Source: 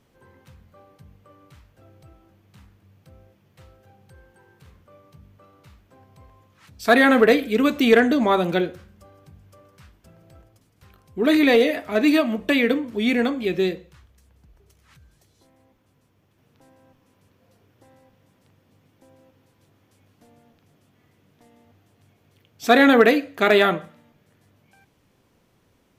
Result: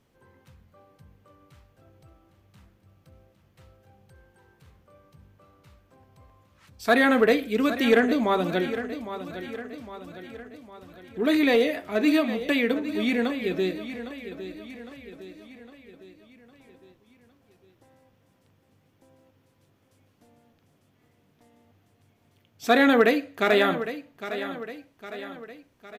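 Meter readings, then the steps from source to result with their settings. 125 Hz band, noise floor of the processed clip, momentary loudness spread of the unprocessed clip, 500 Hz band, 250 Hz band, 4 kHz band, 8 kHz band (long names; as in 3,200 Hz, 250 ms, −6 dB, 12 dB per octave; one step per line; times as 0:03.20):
−4.0 dB, −66 dBFS, 10 LU, −4.0 dB, −4.0 dB, −4.0 dB, can't be measured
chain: repeating echo 808 ms, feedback 51%, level −12 dB
level −4.5 dB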